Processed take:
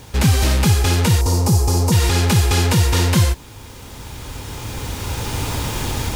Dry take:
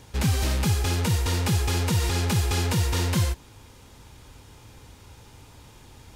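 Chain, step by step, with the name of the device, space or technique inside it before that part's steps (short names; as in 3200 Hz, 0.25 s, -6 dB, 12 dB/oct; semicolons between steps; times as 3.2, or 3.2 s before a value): cheap recorder with automatic gain (white noise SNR 37 dB; recorder AGC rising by 8.2 dB/s); 1.21–1.92 band shelf 2300 Hz -15 dB; gain +8.5 dB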